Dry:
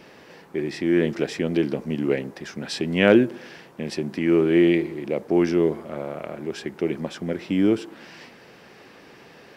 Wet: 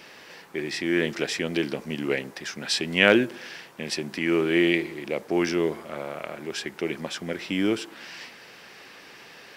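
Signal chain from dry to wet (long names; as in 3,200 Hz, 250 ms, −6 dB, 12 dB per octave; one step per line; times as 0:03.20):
tilt shelving filter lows −6.5 dB, about 910 Hz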